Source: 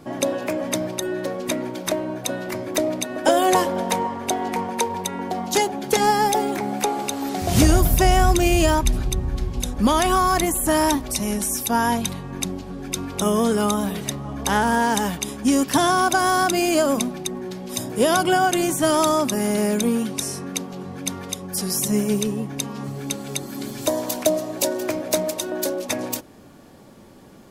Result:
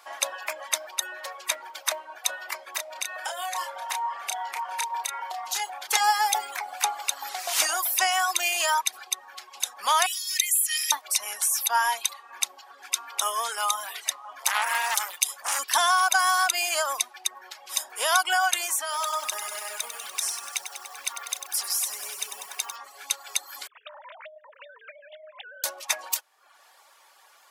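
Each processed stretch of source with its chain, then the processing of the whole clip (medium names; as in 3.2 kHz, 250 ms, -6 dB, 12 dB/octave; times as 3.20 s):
2.74–5.87 s: compression 8:1, threshold -24 dBFS + doubling 31 ms -4 dB
10.06–10.92 s: elliptic high-pass 2.1 kHz, stop band 60 dB + comb 1.6 ms, depth 75%
14.39–15.59 s: treble shelf 5.5 kHz +9 dB + comb 5.7 ms, depth 49% + transformer saturation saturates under 4 kHz
18.81–22.76 s: compression, threshold -22 dBFS + bit-crushed delay 97 ms, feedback 80%, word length 7-bit, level -6.5 dB
23.67–25.64 s: formants replaced by sine waves + compression, threshold -29 dBFS + band-pass 670–2400 Hz
whole clip: high-pass 870 Hz 24 dB/octave; reverb removal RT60 0.68 s; trim +1.5 dB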